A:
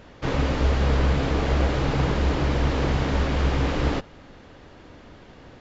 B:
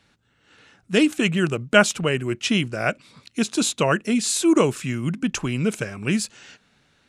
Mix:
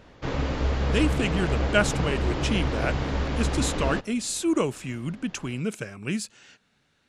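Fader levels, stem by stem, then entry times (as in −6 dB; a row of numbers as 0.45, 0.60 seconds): −4.0, −6.5 decibels; 0.00, 0.00 seconds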